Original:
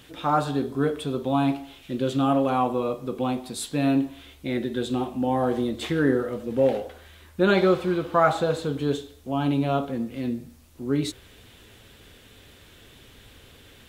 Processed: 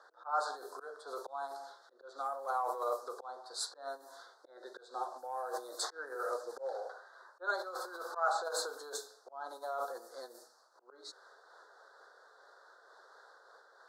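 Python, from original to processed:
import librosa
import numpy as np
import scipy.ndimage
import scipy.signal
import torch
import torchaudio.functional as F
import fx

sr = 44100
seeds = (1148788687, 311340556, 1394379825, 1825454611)

y = fx.auto_swell(x, sr, attack_ms=402.0)
y = scipy.signal.sosfilt(scipy.signal.cheby1(3, 1.0, [1500.0, 4400.0], 'bandstop', fs=sr, output='sos'), y)
y = fx.env_lowpass(y, sr, base_hz=2000.0, full_db=-23.5)
y = fx.over_compress(y, sr, threshold_db=-29.0, ratio=-1.0)
y = scipy.signal.sosfilt(scipy.signal.bessel(8, 890.0, 'highpass', norm='mag', fs=sr, output='sos'), y)
y = fx.am_noise(y, sr, seeds[0], hz=5.7, depth_pct=60)
y = y * librosa.db_to_amplitude(5.5)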